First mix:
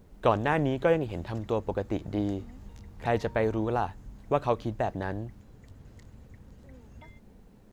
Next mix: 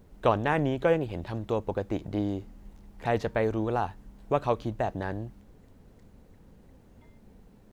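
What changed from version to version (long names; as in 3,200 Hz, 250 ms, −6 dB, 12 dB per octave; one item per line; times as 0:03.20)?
background −12.0 dB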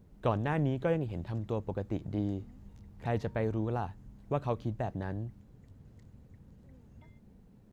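speech −8.5 dB
master: add parametric band 130 Hz +9 dB 2.1 octaves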